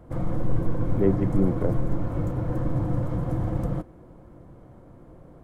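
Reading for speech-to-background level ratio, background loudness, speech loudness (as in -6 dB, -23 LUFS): 1.5 dB, -28.5 LUFS, -27.0 LUFS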